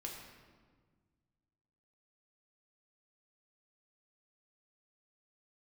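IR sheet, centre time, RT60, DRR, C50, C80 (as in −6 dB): 59 ms, 1.6 s, −1.5 dB, 3.5 dB, 4.5 dB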